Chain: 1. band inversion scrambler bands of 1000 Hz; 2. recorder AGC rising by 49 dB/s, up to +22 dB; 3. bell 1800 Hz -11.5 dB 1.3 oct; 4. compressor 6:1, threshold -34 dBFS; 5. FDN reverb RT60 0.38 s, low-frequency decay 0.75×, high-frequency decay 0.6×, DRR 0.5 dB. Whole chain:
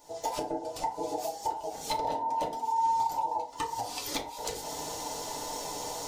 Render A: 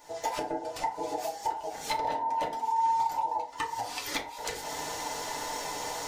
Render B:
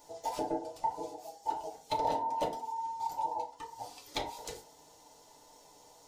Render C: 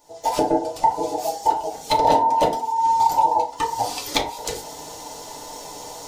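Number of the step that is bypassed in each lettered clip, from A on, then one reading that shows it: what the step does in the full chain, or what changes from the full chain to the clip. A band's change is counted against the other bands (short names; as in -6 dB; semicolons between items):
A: 3, 2 kHz band +8.0 dB; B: 2, crest factor change +2.0 dB; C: 4, mean gain reduction 7.0 dB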